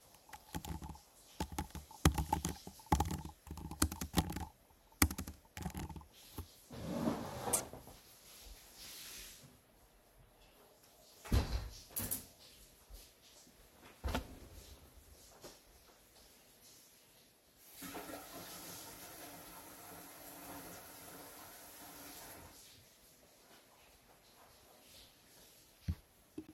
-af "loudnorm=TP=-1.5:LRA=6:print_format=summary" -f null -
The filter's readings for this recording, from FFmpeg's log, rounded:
Input Integrated:    -42.6 LUFS
Input True Peak:      -8.3 dBTP
Input LRA:            14.8 LU
Input Threshold:     -55.1 LUFS